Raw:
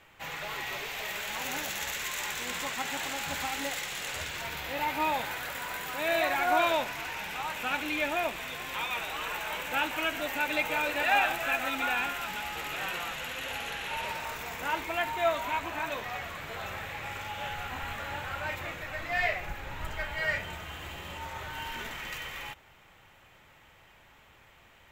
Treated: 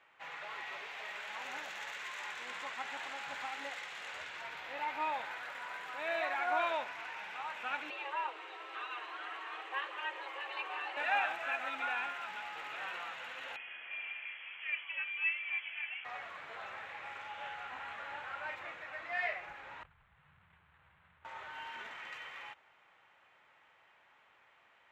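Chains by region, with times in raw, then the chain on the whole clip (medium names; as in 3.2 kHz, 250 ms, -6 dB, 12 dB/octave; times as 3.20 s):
7.90–10.97 s: tilt EQ -2 dB/octave + frequency shift +270 Hz + comb of notches 290 Hz
13.56–16.05 s: resonant high shelf 1.6 kHz -12 dB, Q 1.5 + frequency inversion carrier 3.3 kHz
19.83–21.25 s: inverse Chebyshev band-stop 310–4100 Hz + decimation joined by straight lines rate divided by 8×
whole clip: low-pass 1.3 kHz 12 dB/octave; differentiator; trim +12.5 dB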